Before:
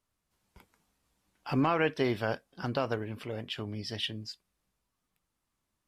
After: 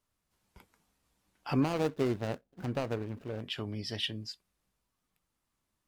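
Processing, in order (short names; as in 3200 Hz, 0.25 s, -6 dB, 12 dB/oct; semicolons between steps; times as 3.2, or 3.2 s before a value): 1.62–3.42 median filter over 41 samples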